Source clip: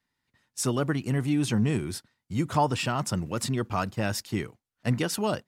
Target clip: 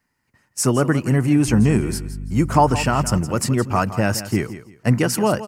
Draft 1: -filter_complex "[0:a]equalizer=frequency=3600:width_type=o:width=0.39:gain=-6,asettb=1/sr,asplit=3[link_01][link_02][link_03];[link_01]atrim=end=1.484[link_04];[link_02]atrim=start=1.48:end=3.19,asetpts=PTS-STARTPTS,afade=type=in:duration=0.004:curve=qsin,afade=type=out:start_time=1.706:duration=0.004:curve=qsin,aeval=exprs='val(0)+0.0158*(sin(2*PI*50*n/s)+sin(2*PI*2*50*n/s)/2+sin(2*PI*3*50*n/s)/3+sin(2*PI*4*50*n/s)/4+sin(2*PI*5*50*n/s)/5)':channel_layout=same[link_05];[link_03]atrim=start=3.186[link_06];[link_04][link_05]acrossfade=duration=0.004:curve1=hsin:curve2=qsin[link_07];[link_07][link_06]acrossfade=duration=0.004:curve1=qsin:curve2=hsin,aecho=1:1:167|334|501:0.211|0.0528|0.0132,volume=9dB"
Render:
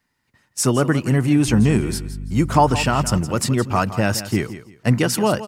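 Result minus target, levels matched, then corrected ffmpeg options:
4,000 Hz band +2.5 dB
-filter_complex "[0:a]equalizer=frequency=3600:width_type=o:width=0.39:gain=-16,asettb=1/sr,asplit=3[link_01][link_02][link_03];[link_01]atrim=end=1.484[link_04];[link_02]atrim=start=1.48:end=3.19,asetpts=PTS-STARTPTS,afade=type=in:duration=0.004:curve=qsin,afade=type=out:start_time=1.706:duration=0.004:curve=qsin,aeval=exprs='val(0)+0.0158*(sin(2*PI*50*n/s)+sin(2*PI*2*50*n/s)/2+sin(2*PI*3*50*n/s)/3+sin(2*PI*4*50*n/s)/4+sin(2*PI*5*50*n/s)/5)':channel_layout=same[link_05];[link_03]atrim=start=3.186[link_06];[link_04][link_05]acrossfade=duration=0.004:curve1=hsin:curve2=qsin[link_07];[link_07][link_06]acrossfade=duration=0.004:curve1=qsin:curve2=hsin,aecho=1:1:167|334|501:0.211|0.0528|0.0132,volume=9dB"

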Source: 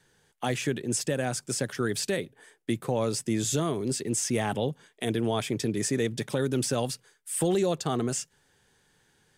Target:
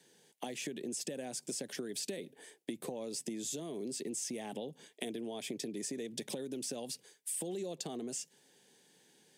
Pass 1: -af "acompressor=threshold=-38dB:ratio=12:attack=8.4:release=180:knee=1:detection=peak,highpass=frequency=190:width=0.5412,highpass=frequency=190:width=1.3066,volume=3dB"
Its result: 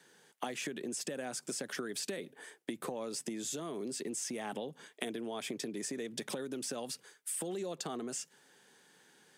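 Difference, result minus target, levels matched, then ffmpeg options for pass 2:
1,000 Hz band +4.5 dB
-af "acompressor=threshold=-38dB:ratio=12:attack=8.4:release=180:knee=1:detection=peak,highpass=frequency=190:width=0.5412,highpass=frequency=190:width=1.3066,equalizer=frequency=1300:width=1.7:gain=-15,volume=3dB"

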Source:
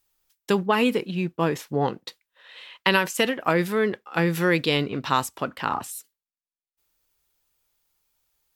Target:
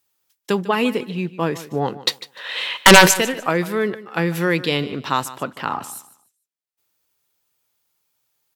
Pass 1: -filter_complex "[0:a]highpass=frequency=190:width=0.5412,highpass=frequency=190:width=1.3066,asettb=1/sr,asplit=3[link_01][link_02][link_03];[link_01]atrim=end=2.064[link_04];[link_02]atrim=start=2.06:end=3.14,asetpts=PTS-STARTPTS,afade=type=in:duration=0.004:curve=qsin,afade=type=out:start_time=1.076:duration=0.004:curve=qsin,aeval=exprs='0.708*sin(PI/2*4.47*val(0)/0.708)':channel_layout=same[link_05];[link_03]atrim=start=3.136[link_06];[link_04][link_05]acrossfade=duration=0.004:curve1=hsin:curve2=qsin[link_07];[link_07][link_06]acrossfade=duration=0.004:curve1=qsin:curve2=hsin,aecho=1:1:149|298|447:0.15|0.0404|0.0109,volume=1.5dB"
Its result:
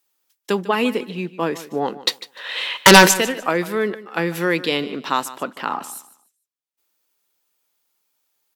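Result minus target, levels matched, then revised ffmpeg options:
125 Hz band −2.5 dB
-filter_complex "[0:a]highpass=frequency=93:width=0.5412,highpass=frequency=93:width=1.3066,asettb=1/sr,asplit=3[link_01][link_02][link_03];[link_01]atrim=end=2.064[link_04];[link_02]atrim=start=2.06:end=3.14,asetpts=PTS-STARTPTS,afade=type=in:duration=0.004:curve=qsin,afade=type=out:start_time=1.076:duration=0.004:curve=qsin,aeval=exprs='0.708*sin(PI/2*4.47*val(0)/0.708)':channel_layout=same[link_05];[link_03]atrim=start=3.136[link_06];[link_04][link_05]acrossfade=duration=0.004:curve1=hsin:curve2=qsin[link_07];[link_07][link_06]acrossfade=duration=0.004:curve1=qsin:curve2=hsin,aecho=1:1:149|298|447:0.15|0.0404|0.0109,volume=1.5dB"

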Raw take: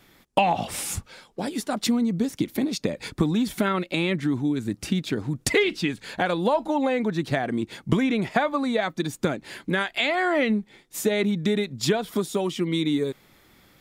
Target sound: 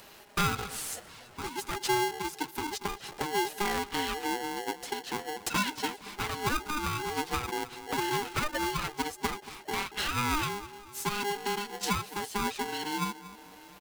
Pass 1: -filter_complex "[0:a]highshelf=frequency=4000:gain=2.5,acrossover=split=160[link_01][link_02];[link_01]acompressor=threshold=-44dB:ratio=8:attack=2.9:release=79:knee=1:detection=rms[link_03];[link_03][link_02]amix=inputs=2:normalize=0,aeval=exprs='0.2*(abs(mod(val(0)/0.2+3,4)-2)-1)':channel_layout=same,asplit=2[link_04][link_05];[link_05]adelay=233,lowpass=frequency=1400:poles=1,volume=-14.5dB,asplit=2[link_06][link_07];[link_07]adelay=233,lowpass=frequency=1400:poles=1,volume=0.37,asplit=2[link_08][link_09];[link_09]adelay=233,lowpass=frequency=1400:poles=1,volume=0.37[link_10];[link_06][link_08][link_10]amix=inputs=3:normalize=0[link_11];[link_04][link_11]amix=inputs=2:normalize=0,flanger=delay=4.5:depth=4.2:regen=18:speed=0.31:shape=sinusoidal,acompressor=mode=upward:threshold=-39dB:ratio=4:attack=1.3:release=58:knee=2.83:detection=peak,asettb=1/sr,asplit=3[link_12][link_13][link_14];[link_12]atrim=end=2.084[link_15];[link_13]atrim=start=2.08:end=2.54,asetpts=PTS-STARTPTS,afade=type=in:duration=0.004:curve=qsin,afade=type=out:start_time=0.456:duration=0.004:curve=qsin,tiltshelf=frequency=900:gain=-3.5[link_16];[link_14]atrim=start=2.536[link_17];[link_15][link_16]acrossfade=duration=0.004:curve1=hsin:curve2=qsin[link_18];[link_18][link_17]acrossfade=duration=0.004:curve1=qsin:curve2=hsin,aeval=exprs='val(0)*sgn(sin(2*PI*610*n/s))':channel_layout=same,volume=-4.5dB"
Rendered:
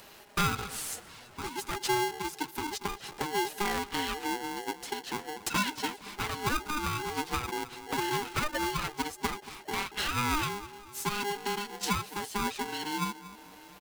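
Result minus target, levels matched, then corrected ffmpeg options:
downward compressor: peak gain reduction +9 dB
-filter_complex "[0:a]highshelf=frequency=4000:gain=2.5,acrossover=split=160[link_01][link_02];[link_01]acompressor=threshold=-34dB:ratio=8:attack=2.9:release=79:knee=1:detection=rms[link_03];[link_03][link_02]amix=inputs=2:normalize=0,aeval=exprs='0.2*(abs(mod(val(0)/0.2+3,4)-2)-1)':channel_layout=same,asplit=2[link_04][link_05];[link_05]adelay=233,lowpass=frequency=1400:poles=1,volume=-14.5dB,asplit=2[link_06][link_07];[link_07]adelay=233,lowpass=frequency=1400:poles=1,volume=0.37,asplit=2[link_08][link_09];[link_09]adelay=233,lowpass=frequency=1400:poles=1,volume=0.37[link_10];[link_06][link_08][link_10]amix=inputs=3:normalize=0[link_11];[link_04][link_11]amix=inputs=2:normalize=0,flanger=delay=4.5:depth=4.2:regen=18:speed=0.31:shape=sinusoidal,acompressor=mode=upward:threshold=-39dB:ratio=4:attack=1.3:release=58:knee=2.83:detection=peak,asettb=1/sr,asplit=3[link_12][link_13][link_14];[link_12]atrim=end=2.084[link_15];[link_13]atrim=start=2.08:end=2.54,asetpts=PTS-STARTPTS,afade=type=in:duration=0.004:curve=qsin,afade=type=out:start_time=0.456:duration=0.004:curve=qsin,tiltshelf=frequency=900:gain=-3.5[link_16];[link_14]atrim=start=2.536[link_17];[link_15][link_16]acrossfade=duration=0.004:curve1=hsin:curve2=qsin[link_18];[link_18][link_17]acrossfade=duration=0.004:curve1=qsin:curve2=hsin,aeval=exprs='val(0)*sgn(sin(2*PI*610*n/s))':channel_layout=same,volume=-4.5dB"

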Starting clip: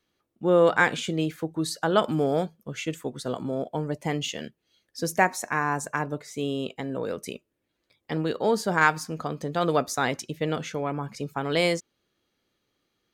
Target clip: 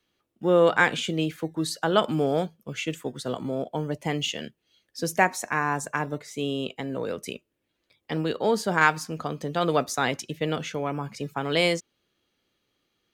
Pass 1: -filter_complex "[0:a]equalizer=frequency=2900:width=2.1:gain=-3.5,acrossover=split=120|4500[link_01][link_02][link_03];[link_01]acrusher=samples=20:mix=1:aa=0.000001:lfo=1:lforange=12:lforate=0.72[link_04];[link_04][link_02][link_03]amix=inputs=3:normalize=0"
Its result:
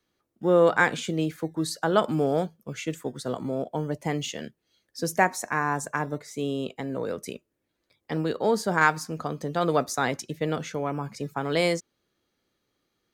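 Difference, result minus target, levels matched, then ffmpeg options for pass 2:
4,000 Hz band −4.5 dB
-filter_complex "[0:a]equalizer=frequency=2900:width=2.1:gain=4,acrossover=split=120|4500[link_01][link_02][link_03];[link_01]acrusher=samples=20:mix=1:aa=0.000001:lfo=1:lforange=12:lforate=0.72[link_04];[link_04][link_02][link_03]amix=inputs=3:normalize=0"

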